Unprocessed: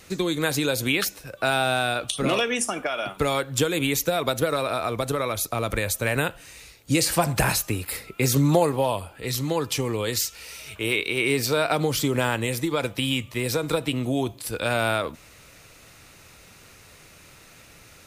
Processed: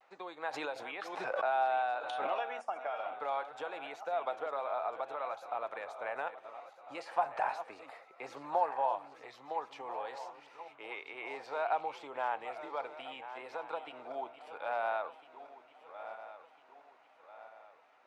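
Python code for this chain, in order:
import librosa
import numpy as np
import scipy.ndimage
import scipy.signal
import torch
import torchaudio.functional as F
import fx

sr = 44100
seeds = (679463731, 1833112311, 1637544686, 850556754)

y = fx.reverse_delay_fb(x, sr, ms=673, feedback_pct=64, wet_db=-12)
y = fx.ladder_bandpass(y, sr, hz=890.0, resonance_pct=60)
y = fx.vibrato(y, sr, rate_hz=0.61, depth_cents=41.0)
y = fx.pre_swell(y, sr, db_per_s=34.0, at=(0.52, 2.26), fade=0.02)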